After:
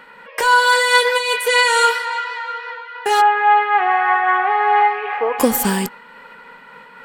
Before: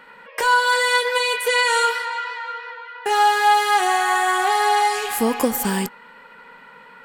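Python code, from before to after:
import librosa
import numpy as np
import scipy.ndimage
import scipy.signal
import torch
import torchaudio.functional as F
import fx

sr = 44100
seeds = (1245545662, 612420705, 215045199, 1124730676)

y = fx.ellip_bandpass(x, sr, low_hz=430.0, high_hz=2400.0, order=3, stop_db=60, at=(3.2, 5.38), fade=0.02)
y = fx.am_noise(y, sr, seeds[0], hz=5.7, depth_pct=60)
y = F.gain(torch.from_numpy(y), 6.0).numpy()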